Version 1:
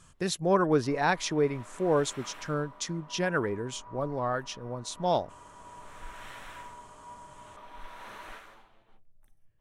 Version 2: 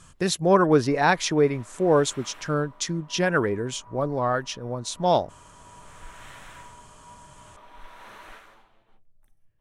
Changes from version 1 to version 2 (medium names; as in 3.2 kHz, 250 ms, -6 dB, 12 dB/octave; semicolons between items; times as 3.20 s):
speech +6.0 dB; reverb: off